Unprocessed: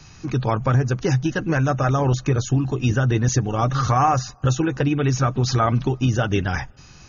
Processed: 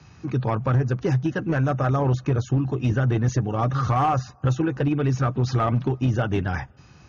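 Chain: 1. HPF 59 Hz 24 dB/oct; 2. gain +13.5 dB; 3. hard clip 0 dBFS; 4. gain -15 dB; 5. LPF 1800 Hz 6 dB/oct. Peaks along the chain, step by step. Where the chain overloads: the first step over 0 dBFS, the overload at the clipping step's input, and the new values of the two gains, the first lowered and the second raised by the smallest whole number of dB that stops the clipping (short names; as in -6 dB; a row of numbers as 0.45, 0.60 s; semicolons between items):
-7.0, +6.5, 0.0, -15.0, -15.0 dBFS; step 2, 6.5 dB; step 2 +6.5 dB, step 4 -8 dB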